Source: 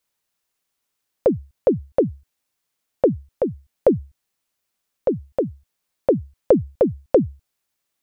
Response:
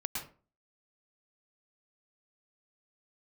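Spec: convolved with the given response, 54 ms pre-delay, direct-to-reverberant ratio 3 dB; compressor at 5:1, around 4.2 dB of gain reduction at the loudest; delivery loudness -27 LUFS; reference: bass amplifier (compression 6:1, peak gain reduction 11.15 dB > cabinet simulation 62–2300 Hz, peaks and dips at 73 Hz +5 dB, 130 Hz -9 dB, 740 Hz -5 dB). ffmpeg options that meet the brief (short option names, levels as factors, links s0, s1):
-filter_complex "[0:a]acompressor=threshold=0.178:ratio=5,asplit=2[s0][s1];[1:a]atrim=start_sample=2205,adelay=54[s2];[s1][s2]afir=irnorm=-1:irlink=0,volume=0.531[s3];[s0][s3]amix=inputs=2:normalize=0,acompressor=threshold=0.0562:ratio=6,highpass=f=62:w=0.5412,highpass=f=62:w=1.3066,equalizer=f=73:t=q:w=4:g=5,equalizer=f=130:t=q:w=4:g=-9,equalizer=f=740:t=q:w=4:g=-5,lowpass=f=2300:w=0.5412,lowpass=f=2300:w=1.3066,volume=1.88"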